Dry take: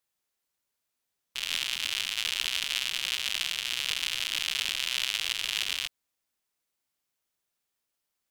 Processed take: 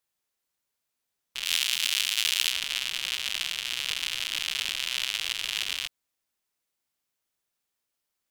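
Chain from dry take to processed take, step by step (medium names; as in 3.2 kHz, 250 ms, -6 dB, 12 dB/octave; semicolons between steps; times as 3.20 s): 1.45–2.52 s: tilt EQ +2.5 dB/octave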